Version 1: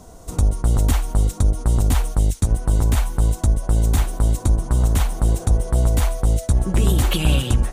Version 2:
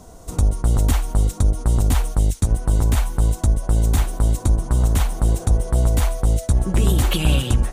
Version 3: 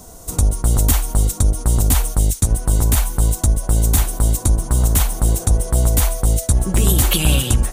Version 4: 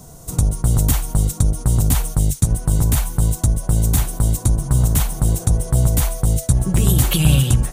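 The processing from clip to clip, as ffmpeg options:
-af anull
-af "aemphasis=mode=production:type=50kf,volume=1.5dB"
-af "equalizer=f=140:t=o:w=0.54:g=14.5,volume=-3dB"

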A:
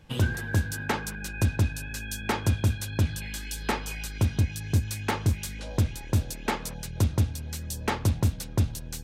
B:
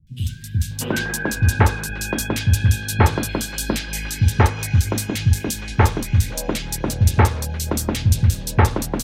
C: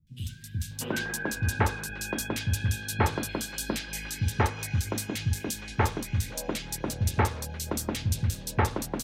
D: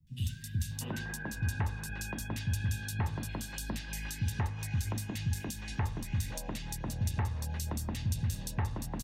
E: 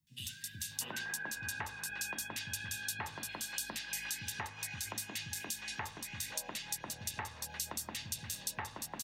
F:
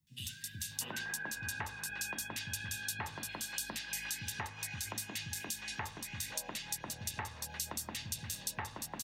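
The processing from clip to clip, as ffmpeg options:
-filter_complex "[0:a]bandreject=f=50:t=h:w=6,bandreject=f=100:t=h:w=6,acrossover=split=200|2600[a][b][c];[c]adelay=70[d];[b]adelay=710[e];[a][e][d]amix=inputs=3:normalize=0,dynaudnorm=f=190:g=7:m=9dB,volume=2dB"
-af "lowshelf=f=120:g=-7,volume=-7.5dB"
-filter_complex "[0:a]aecho=1:1:1.1:0.36,acrossover=split=170[a][b];[a]alimiter=level_in=2.5dB:limit=-24dB:level=0:latency=1,volume=-2.5dB[c];[b]acompressor=threshold=-39dB:ratio=6[d];[c][d]amix=inputs=2:normalize=0"
-af "highpass=f=1.4k:p=1,volume=4dB"
-af "lowshelf=f=220:g=3.5"

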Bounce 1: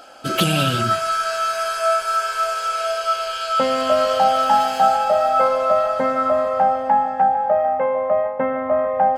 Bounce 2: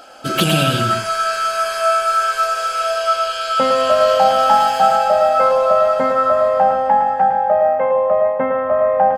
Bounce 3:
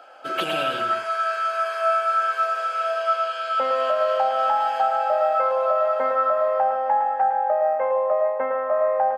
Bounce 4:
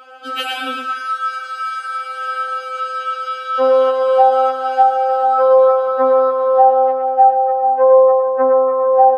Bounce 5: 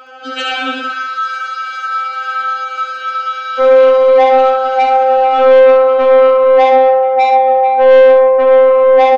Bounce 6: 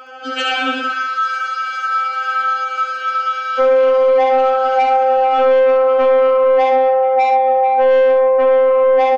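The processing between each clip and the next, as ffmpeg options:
-af "aecho=1:1:109:0.501,volume=2dB"
-filter_complex "[0:a]acrossover=split=370 2900:gain=0.0631 1 0.178[a][b][c];[a][b][c]amix=inputs=3:normalize=0,alimiter=limit=-7dB:level=0:latency=1:release=323,volume=-4.5dB"
-af "afftfilt=real='re*3.46*eq(mod(b,12),0)':imag='im*3.46*eq(mod(b,12),0)':win_size=2048:overlap=0.75,volume=6.5dB"
-af "aresample=16000,asoftclip=type=tanh:threshold=-11.5dB,aresample=44100,aecho=1:1:15|67:0.376|0.596,volume=4.5dB"
-af "bandreject=f=3.8k:w=9.1,acompressor=threshold=-10dB:ratio=6"

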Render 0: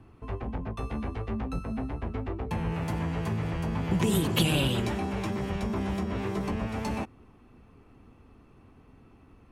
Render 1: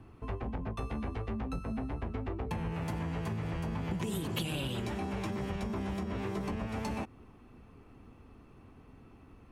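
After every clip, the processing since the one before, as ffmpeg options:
-af "acompressor=threshold=-32dB:ratio=6"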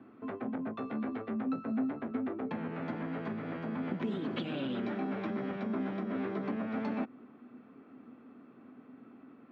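-af "highpass=f=170:w=0.5412,highpass=f=170:w=1.3066,equalizer=f=170:t=q:w=4:g=-4,equalizer=f=250:t=q:w=4:g=10,equalizer=f=610:t=q:w=4:g=3,equalizer=f=930:t=q:w=4:g=-5,equalizer=f=1.4k:t=q:w=4:g=5,equalizer=f=2.8k:t=q:w=4:g=-7,lowpass=f=3.4k:w=0.5412,lowpass=f=3.4k:w=1.3066"

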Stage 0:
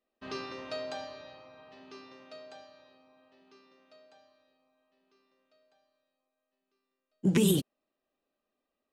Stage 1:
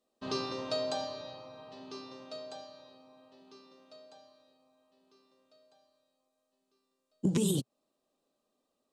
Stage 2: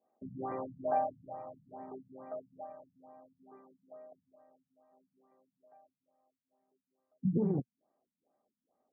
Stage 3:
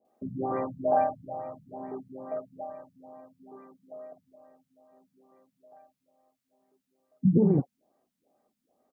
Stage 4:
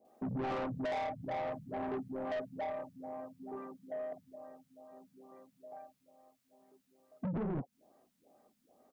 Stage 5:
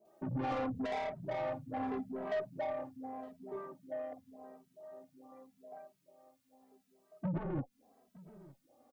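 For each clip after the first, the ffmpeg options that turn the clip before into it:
-af "equalizer=f=125:t=o:w=1:g=10,equalizer=f=250:t=o:w=1:g=5,equalizer=f=500:t=o:w=1:g=6,equalizer=f=1k:t=o:w=1:g=7,equalizer=f=2k:t=o:w=1:g=-5,equalizer=f=4k:t=o:w=1:g=8,equalizer=f=8k:t=o:w=1:g=11,acompressor=threshold=-23dB:ratio=6,volume=-3dB"
-af "highpass=69,equalizer=f=750:t=o:w=0.4:g=13,afftfilt=real='re*lt(b*sr/1024,220*pow(2400/220,0.5+0.5*sin(2*PI*2.3*pts/sr)))':imag='im*lt(b*sr/1024,220*pow(2400/220,0.5+0.5*sin(2*PI*2.3*pts/sr)))':win_size=1024:overlap=0.75,volume=-1.5dB"
-filter_complex "[0:a]acrossover=split=960[a][b];[b]adelay=50[c];[a][c]amix=inputs=2:normalize=0,volume=9dB"
-af "acompressor=threshold=-30dB:ratio=10,asoftclip=type=tanh:threshold=-39dB,volume=5.5dB"
-filter_complex "[0:a]aecho=1:1:914:0.0841,asplit=2[a][b];[b]adelay=2.7,afreqshift=-0.84[c];[a][c]amix=inputs=2:normalize=1,volume=3dB"

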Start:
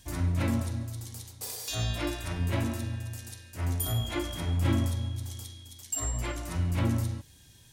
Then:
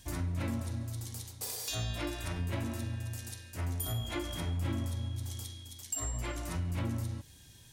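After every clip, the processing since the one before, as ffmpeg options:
-af "acompressor=threshold=-34dB:ratio=2.5"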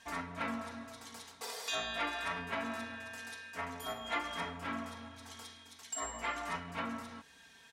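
-af "bandpass=f=1.3k:t=q:w=0.97:csg=0,aecho=1:1:4.4:0.81,volume=6.5dB"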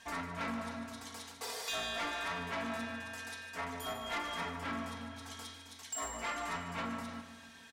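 -af "asoftclip=type=tanh:threshold=-35dB,aecho=1:1:149|298|447|596|745|894:0.251|0.141|0.0788|0.0441|0.0247|0.0138,volume=2.5dB"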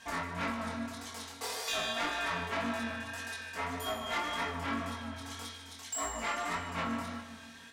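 -af "flanger=delay=20:depth=5.5:speed=1.8,volume=6.5dB"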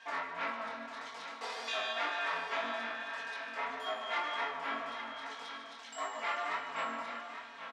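-filter_complex "[0:a]highpass=510,lowpass=3.5k,asplit=2[a][b];[b]aecho=0:1:836:0.316[c];[a][c]amix=inputs=2:normalize=0"

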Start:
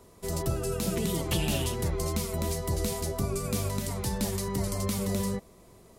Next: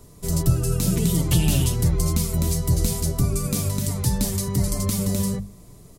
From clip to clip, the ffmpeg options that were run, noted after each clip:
-af "bass=f=250:g=13,treble=f=4k:g=8,bandreject=f=50:t=h:w=6,bandreject=f=100:t=h:w=6,bandreject=f=150:t=h:w=6,bandreject=f=200:t=h:w=6,aecho=1:1:6.8:0.36"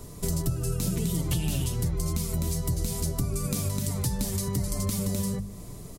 -af "acompressor=threshold=-32dB:ratio=4,aecho=1:1:151:0.0841,volume=5dB"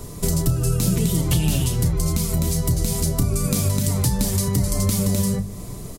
-filter_complex "[0:a]asplit=2[a][b];[b]adelay=32,volume=-12dB[c];[a][c]amix=inputs=2:normalize=0,volume=7.5dB"

